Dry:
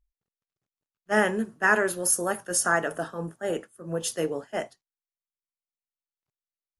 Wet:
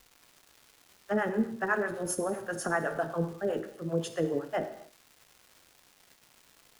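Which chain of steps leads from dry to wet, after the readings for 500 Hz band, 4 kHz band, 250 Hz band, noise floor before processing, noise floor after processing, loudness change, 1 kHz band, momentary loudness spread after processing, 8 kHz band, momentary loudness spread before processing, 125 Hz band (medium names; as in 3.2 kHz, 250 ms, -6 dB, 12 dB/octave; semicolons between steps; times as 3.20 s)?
-3.0 dB, -9.0 dB, -1.0 dB, under -85 dBFS, -63 dBFS, -5.5 dB, -5.5 dB, 5 LU, -13.0 dB, 12 LU, +0.5 dB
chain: low-pass 1.2 kHz 6 dB/octave; compression, threshold -28 dBFS, peak gain reduction 9.5 dB; harmonic tremolo 7.8 Hz, depth 100%, crossover 540 Hz; crackle 510 per s -53 dBFS; gated-style reverb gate 300 ms falling, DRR 8 dB; trim +7.5 dB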